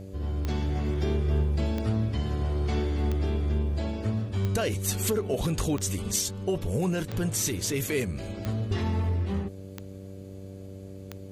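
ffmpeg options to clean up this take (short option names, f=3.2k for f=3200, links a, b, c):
-af "adeclick=t=4,bandreject=f=96.3:t=h:w=4,bandreject=f=192.6:t=h:w=4,bandreject=f=288.9:t=h:w=4,bandreject=f=385.2:t=h:w=4,bandreject=f=481.5:t=h:w=4,bandreject=f=577.8:t=h:w=4"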